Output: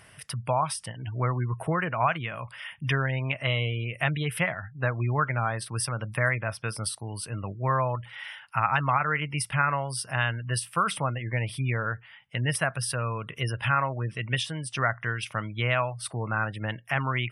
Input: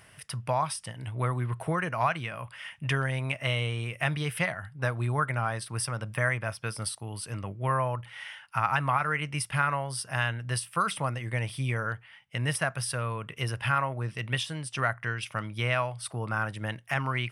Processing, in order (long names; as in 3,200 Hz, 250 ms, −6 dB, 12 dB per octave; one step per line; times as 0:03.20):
gate on every frequency bin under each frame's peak −30 dB strong
level +2 dB